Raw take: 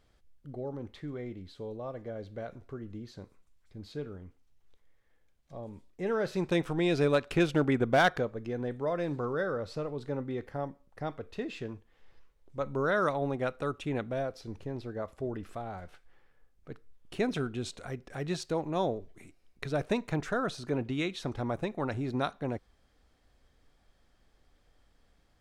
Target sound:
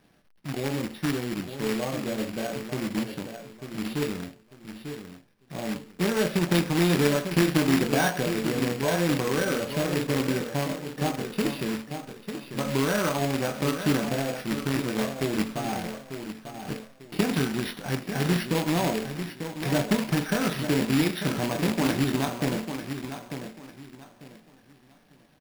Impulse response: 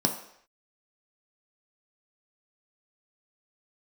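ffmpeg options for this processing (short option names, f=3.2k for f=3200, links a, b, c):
-filter_complex "[0:a]acompressor=threshold=-33dB:ratio=3,equalizer=f=84:t=o:w=0.44:g=-6,asplit=2[a][b];[b]adelay=23,volume=-7.5dB[c];[a][c]amix=inputs=2:normalize=0,aecho=1:1:895|1790|2685:0.355|0.0958|0.0259[d];[1:a]atrim=start_sample=2205,atrim=end_sample=6174[e];[d][e]afir=irnorm=-1:irlink=0,acrusher=bits=2:mode=log:mix=0:aa=0.000001,equalizer=f=2.4k:t=o:w=1.5:g=7,acrusher=samples=6:mix=1:aa=0.000001,volume=-6dB"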